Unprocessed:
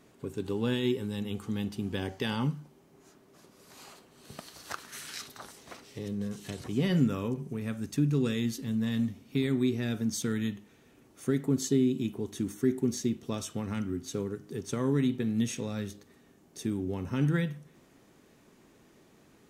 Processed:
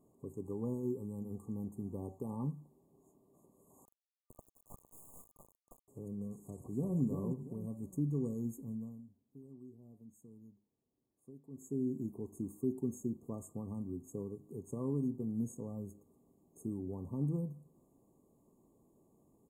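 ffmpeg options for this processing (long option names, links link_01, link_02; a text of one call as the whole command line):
ffmpeg -i in.wav -filter_complex "[0:a]asettb=1/sr,asplit=3[link_01][link_02][link_03];[link_01]atrim=end=3.854[link_04];[link_02]atrim=start=3.85:end=5.88,asetpts=PTS-STARTPTS,afade=type=in:duration=0.004:curve=qsin,afade=type=out:start_time=2.026:duration=0.004:curve=qsin,acrusher=bits=4:dc=4:mix=0:aa=0.000001[link_05];[link_03]atrim=start=5.876[link_06];[link_04][link_05]acrossfade=duration=0.004:curve1=hsin:curve2=qsin[link_07];[link_07][link_06]acrossfade=duration=0.004:curve1=qsin:curve2=hsin,asplit=2[link_08][link_09];[link_09]afade=type=in:start_time=6.38:duration=0.01,afade=type=out:start_time=6.98:duration=0.01,aecho=0:1:340|680|1020|1360:0.562341|0.196819|0.0688868|0.0241104[link_10];[link_08][link_10]amix=inputs=2:normalize=0,asplit=3[link_11][link_12][link_13];[link_11]atrim=end=9.02,asetpts=PTS-STARTPTS,afade=type=out:start_time=8.59:duration=0.43:silence=0.133352[link_14];[link_12]atrim=start=9.02:end=11.5,asetpts=PTS-STARTPTS,volume=-17.5dB[link_15];[link_13]atrim=start=11.5,asetpts=PTS-STARTPTS,afade=type=in:duration=0.43:silence=0.133352[link_16];[link_14][link_15][link_16]concat=n=3:v=0:a=1,afftfilt=real='re*(1-between(b*sr/4096,1200,6500))':imag='im*(1-between(b*sr/4096,1200,6500))':win_size=4096:overlap=0.75,equalizer=frequency=2800:width_type=o:width=2.8:gain=-9.5,volume=-7.5dB" out.wav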